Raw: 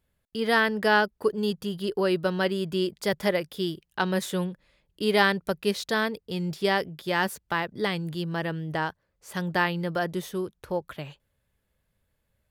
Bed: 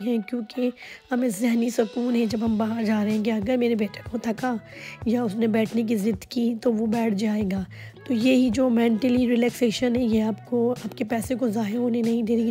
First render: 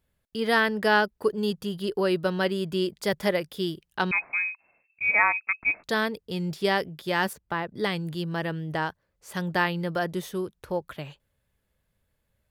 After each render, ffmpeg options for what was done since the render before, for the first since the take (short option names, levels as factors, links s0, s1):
-filter_complex "[0:a]asettb=1/sr,asplit=3[s0][s1][s2];[s0]atrim=end=4.114[s3];[s1]atrim=start=4.11:end=5.84,asetpts=PTS-STARTPTS,afade=t=in:d=0.004:c=qsin,afade=t=out:st=1.726:d=0.004:c=qsin,lowpass=f=2300:t=q:w=0.5098,lowpass=f=2300:t=q:w=0.6013,lowpass=f=2300:t=q:w=0.9,lowpass=f=2300:t=q:w=2.563,afreqshift=-2700[s4];[s2]atrim=start=5.836[s5];[s3][s4]acrossfade=d=0.004:c1=hsin:c2=qsin[s6];[s6][s5]acrossfade=d=0.004:c1=qsin:c2=hsin,asettb=1/sr,asplit=3[s7][s8][s9];[s7]atrim=end=7.334[s10];[s8]atrim=start=7.33:end=7.75,asetpts=PTS-STARTPTS,afade=t=in:d=0.004:c=qsin,afade=t=out:st=0.416:d=0.004:c=qsin,highshelf=f=2300:g=-10.5[s11];[s9]atrim=start=7.746[s12];[s10][s11]acrossfade=d=0.004:c1=hsin:c2=qsin[s13];[s13][s12]acrossfade=d=0.004:c1=qsin:c2=hsin"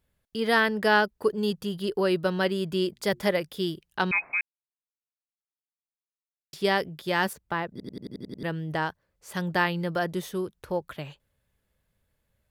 -filter_complex "[0:a]asettb=1/sr,asplit=3[s0][s1][s2];[s0]atrim=end=2.914[s3];[s1]atrim=start=2.91:end=3.37,asetpts=PTS-STARTPTS,afade=t=in:d=0.004:c=qsin,afade=t=out:st=0.456:d=0.004:c=qsin,bandreject=f=118.4:t=h:w=4,bandreject=f=236.8:t=h:w=4,bandreject=f=355.2:t=h:w=4[s4];[s2]atrim=start=3.366[s5];[s3][s4]acrossfade=d=0.004:c1=hsin:c2=qsin[s6];[s6][s5]acrossfade=d=0.004:c1=qsin:c2=hsin,asplit=11[s7][s8][s9][s10][s11][s12][s13][s14][s15][s16][s17];[s7]atrim=end=4.41,asetpts=PTS-STARTPTS,afade=t=out:st=4.406:d=0.004:c=hsin[s18];[s8]atrim=start=4.41:end=6.53,asetpts=PTS-STARTPTS,volume=0[s19];[s9]atrim=start=6.53:end=7.802,asetpts=PTS-STARTPTS,afade=t=in:d=0.004:c=hsin[s20];[s10]atrim=start=7.708:end=7.802[s21];[s11]atrim=start=7.708:end=7.802[s22];[s12]atrim=start=7.708:end=7.802[s23];[s13]atrim=start=7.708:end=7.802[s24];[s14]atrim=start=7.708:end=7.802[s25];[s15]atrim=start=7.708:end=7.802[s26];[s16]atrim=start=7.708:end=7.802[s27];[s17]atrim=start=8.428[s28];[s18][s19][s20]concat=n=3:v=0:a=1[s29];[s29][s21]acrossfade=d=0.004:c1=hsin:c2=hsin[s30];[s30][s22]acrossfade=d=0.004:c1=hsin:c2=hsin[s31];[s31][s23]acrossfade=d=0.004:c1=hsin:c2=hsin[s32];[s32][s24]acrossfade=d=0.004:c1=hsin:c2=hsin[s33];[s33][s25]acrossfade=d=0.004:c1=hsin:c2=hsin[s34];[s34][s26]acrossfade=d=0.004:c1=hsin:c2=hsin[s35];[s35][s27]acrossfade=d=0.004:c1=hsin:c2=hsin[s36];[s36][s28]acrossfade=d=0.004:c1=hsin:c2=hsin"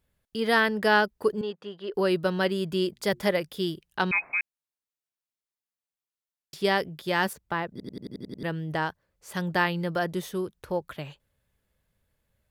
-filter_complex "[0:a]asettb=1/sr,asplit=3[s0][s1][s2];[s0]atrim=end=1.414[s3];[s1]atrim=start=1.41:end=1.94,asetpts=PTS-STARTPTS,afade=t=in:d=0.004:c=qsin,afade=t=out:st=0.526:d=0.004:c=qsin,highpass=420,lowpass=2300[s4];[s2]atrim=start=1.936[s5];[s3][s4]acrossfade=d=0.004:c1=hsin:c2=qsin[s6];[s6][s5]acrossfade=d=0.004:c1=qsin:c2=hsin"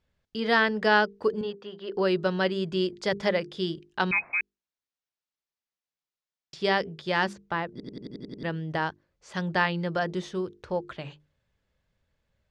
-af "lowpass=f=6500:w=0.5412,lowpass=f=6500:w=1.3066,bandreject=f=50:t=h:w=6,bandreject=f=100:t=h:w=6,bandreject=f=150:t=h:w=6,bandreject=f=200:t=h:w=6,bandreject=f=250:t=h:w=6,bandreject=f=300:t=h:w=6,bandreject=f=350:t=h:w=6,bandreject=f=400:t=h:w=6,bandreject=f=450:t=h:w=6"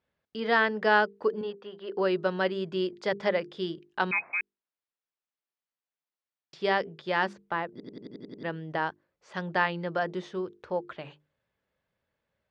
-af "highpass=f=340:p=1,aemphasis=mode=reproduction:type=75fm"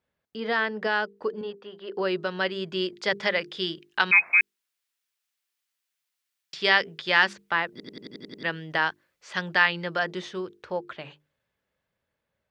-filter_complex "[0:a]acrossover=split=1500[s0][s1];[s0]alimiter=limit=0.106:level=0:latency=1:release=180[s2];[s1]dynaudnorm=f=530:g=11:m=4.47[s3];[s2][s3]amix=inputs=2:normalize=0"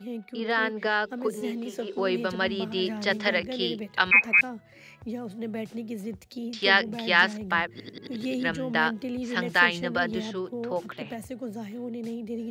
-filter_complex "[1:a]volume=0.266[s0];[0:a][s0]amix=inputs=2:normalize=0"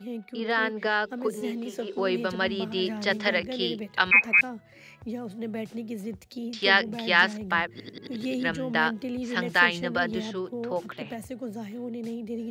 -af anull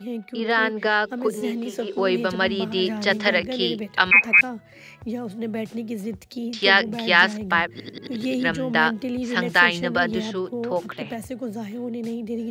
-af "volume=1.78,alimiter=limit=0.708:level=0:latency=1"